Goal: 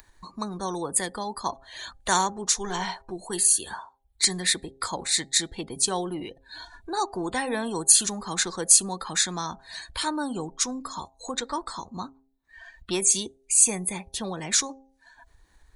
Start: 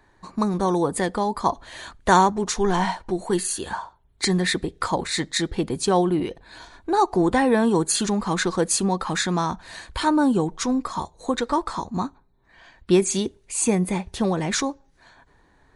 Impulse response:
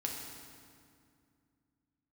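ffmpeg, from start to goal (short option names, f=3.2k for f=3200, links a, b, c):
-filter_complex "[0:a]acrossover=split=370[a][b];[a]asoftclip=type=tanh:threshold=-19.5dB[c];[c][b]amix=inputs=2:normalize=0,afftdn=nr=21:nf=-43,acompressor=mode=upward:threshold=-28dB:ratio=2.5,crystalizer=i=6:c=0,bandreject=f=133.9:t=h:w=4,bandreject=f=267.8:t=h:w=4,bandreject=f=401.7:t=h:w=4,bandreject=f=535.6:t=h:w=4,bandreject=f=669.5:t=h:w=4,bandreject=f=803.4:t=h:w=4,volume=-10dB"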